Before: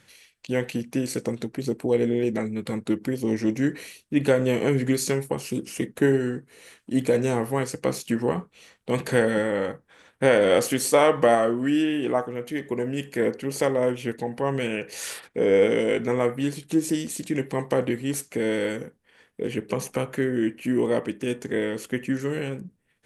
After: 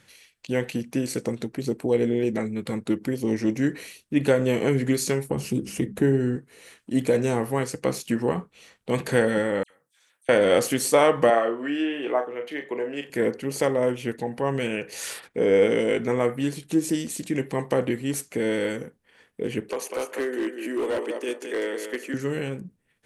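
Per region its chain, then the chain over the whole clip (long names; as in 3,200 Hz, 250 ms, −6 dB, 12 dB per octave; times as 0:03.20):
0:05.29–0:06.36: low-shelf EQ 330 Hz +11.5 dB + mains-hum notches 50/100/150/200 Hz + downward compressor 1.5 to 1, threshold −27 dBFS
0:09.63–0:10.29: downward compressor 3 to 1, threshold −38 dBFS + first-order pre-emphasis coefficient 0.97 + all-pass dispersion lows, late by 74 ms, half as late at 2,700 Hz
0:11.30–0:13.10: three-way crossover with the lows and the highs turned down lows −21 dB, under 300 Hz, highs −16 dB, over 3,900 Hz + double-tracking delay 35 ms −8 dB + one half of a high-frequency compander encoder only
0:19.69–0:22.14: high-pass filter 330 Hz 24 dB per octave + repeating echo 197 ms, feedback 22%, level −8 dB + gain into a clipping stage and back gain 22 dB
whole clip: no processing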